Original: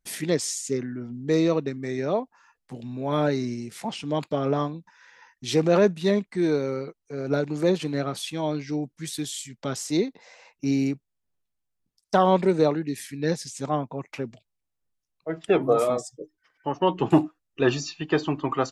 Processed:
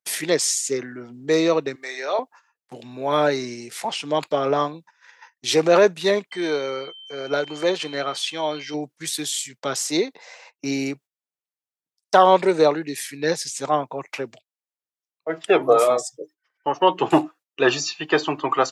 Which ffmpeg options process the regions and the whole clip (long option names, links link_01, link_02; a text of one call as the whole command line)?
ffmpeg -i in.wav -filter_complex "[0:a]asettb=1/sr,asplit=3[link_01][link_02][link_03];[link_01]atrim=end=1.754[link_04];[link_02]atrim=start=1.75:end=2.19,asetpts=PTS-STARTPTS,afade=type=in:duration=0.004:curve=qsin,afade=type=out:start_time=0.436:duration=0.004:curve=qsin,highpass=680,equalizer=frequency=4100:width_type=o:width=0.32:gain=4.5,asplit=2[link_05][link_06];[link_06]adelay=30,volume=-11dB[link_07];[link_05][link_07]amix=inputs=2:normalize=0,atrim=end_sample=19404[link_08];[link_03]atrim=start=2.186[link_09];[link_04][link_08]acrossfade=duration=0.004:curve1=hsin:curve2=qsin[link_10];[link_10][link_09]acrossfade=duration=0.004:curve1=qsin:curve2=hsin,asettb=1/sr,asplit=3[link_11][link_12][link_13];[link_11]atrim=end=6.314[link_14];[link_12]atrim=start=6.31:end=8.74,asetpts=PTS-STARTPTS,afade=type=in:duration=0.004:curve=qsin,afade=type=out:start_time=2.426:duration=0.004:curve=qsin,lowpass=7000,lowshelf=frequency=430:gain=-6.5,aeval=exprs='val(0)+0.00447*sin(2*PI*3100*n/s)':channel_layout=same[link_15];[link_13]atrim=start=8.736[link_16];[link_14][link_15]acrossfade=duration=0.004:curve1=hsin:curve2=qsin[link_17];[link_17][link_16]acrossfade=duration=0.004:curve1=qsin:curve2=hsin,highpass=frequency=160:width=0.5412,highpass=frequency=160:width=1.3066,equalizer=frequency=210:width_type=o:width=1.2:gain=-15,agate=range=-15dB:threshold=-52dB:ratio=16:detection=peak,volume=8dB" out.wav